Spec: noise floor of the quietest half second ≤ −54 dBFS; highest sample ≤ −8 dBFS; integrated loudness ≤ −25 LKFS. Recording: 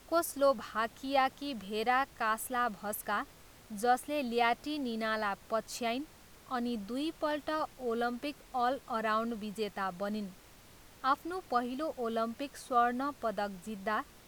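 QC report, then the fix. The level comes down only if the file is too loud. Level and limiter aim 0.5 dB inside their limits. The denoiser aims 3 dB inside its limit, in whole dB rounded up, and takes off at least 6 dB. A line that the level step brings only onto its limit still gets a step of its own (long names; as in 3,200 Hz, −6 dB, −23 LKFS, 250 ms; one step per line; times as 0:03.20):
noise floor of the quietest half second −57 dBFS: in spec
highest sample −16.0 dBFS: in spec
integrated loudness −34.0 LKFS: in spec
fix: no processing needed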